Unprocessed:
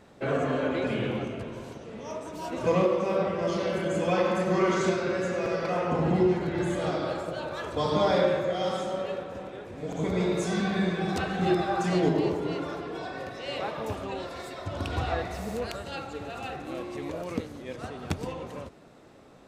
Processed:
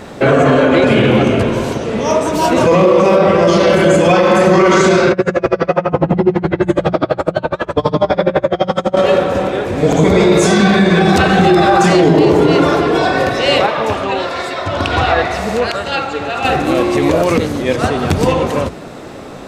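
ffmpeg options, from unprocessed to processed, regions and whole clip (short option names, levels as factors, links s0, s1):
-filter_complex "[0:a]asettb=1/sr,asplit=3[s0][s1][s2];[s0]atrim=end=5.124[s3];[s1]atrim=start=5.12:end=8.97,asetpts=PTS-STARTPTS,afade=t=in:d=0.004:c=qsin,afade=t=out:st=3.846:d=0.004:c=qsin,aemphasis=mode=reproduction:type=75kf,aeval=exprs='val(0)*pow(10,-35*(0.5-0.5*cos(2*PI*12*n/s))/20)':c=same[s4];[s2]atrim=start=8.966[s5];[s3][s4]acrossfade=d=0.004:c1=hsin:c2=qsin[s6];[s6][s5]acrossfade=d=0.004:c1=qsin:c2=hsin,asettb=1/sr,asplit=3[s7][s8][s9];[s7]atrim=end=13.664[s10];[s8]atrim=start=13.66:end=16.45,asetpts=PTS-STARTPTS,afade=t=in:d=0.004:c=qsin,afade=t=out:st=2.786:d=0.004:c=qsin,highpass=f=1100:p=1,aemphasis=mode=reproduction:type=bsi[s11];[s9]atrim=start=16.446[s12];[s10][s11]acrossfade=d=0.004:c1=hsin:c2=qsin[s13];[s13][s12]acrossfade=d=0.004:c1=qsin:c2=hsin,bandreject=f=60:t=h:w=6,bandreject=f=120:t=h:w=6,bandreject=f=180:t=h:w=6,alimiter=level_in=15.8:limit=0.891:release=50:level=0:latency=1,volume=0.891"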